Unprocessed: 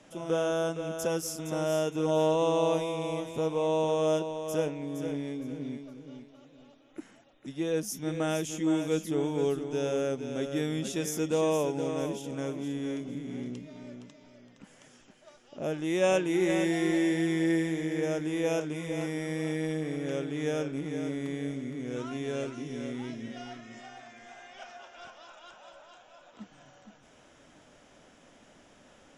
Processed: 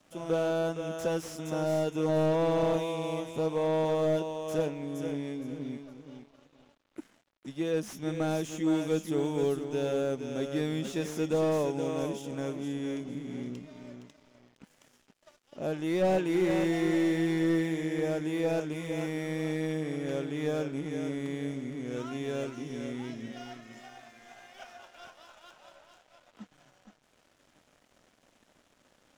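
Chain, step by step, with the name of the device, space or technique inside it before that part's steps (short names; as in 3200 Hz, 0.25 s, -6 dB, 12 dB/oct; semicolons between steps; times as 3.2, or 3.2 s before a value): early transistor amplifier (crossover distortion -57.5 dBFS; slew limiter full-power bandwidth 42 Hz); 9.08–9.65 high shelf 9000 Hz +6 dB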